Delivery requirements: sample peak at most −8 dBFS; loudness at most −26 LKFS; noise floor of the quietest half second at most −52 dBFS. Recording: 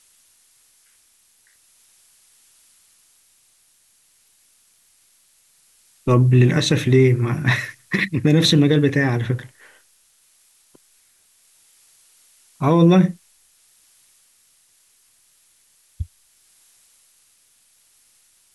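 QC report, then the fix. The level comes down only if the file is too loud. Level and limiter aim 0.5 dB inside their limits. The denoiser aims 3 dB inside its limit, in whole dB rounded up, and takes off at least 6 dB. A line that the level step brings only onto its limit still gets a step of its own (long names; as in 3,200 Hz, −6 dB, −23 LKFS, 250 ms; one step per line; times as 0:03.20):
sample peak −5.5 dBFS: out of spec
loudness −17.5 LKFS: out of spec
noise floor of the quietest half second −59 dBFS: in spec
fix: level −9 dB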